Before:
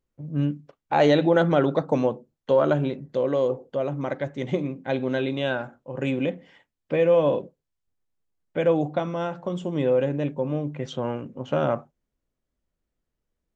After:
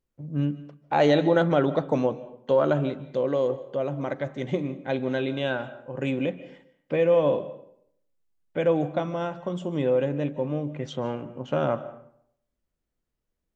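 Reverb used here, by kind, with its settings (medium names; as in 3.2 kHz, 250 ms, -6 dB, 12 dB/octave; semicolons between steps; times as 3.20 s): algorithmic reverb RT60 0.67 s, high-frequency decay 0.65×, pre-delay 110 ms, DRR 15.5 dB; trim -1.5 dB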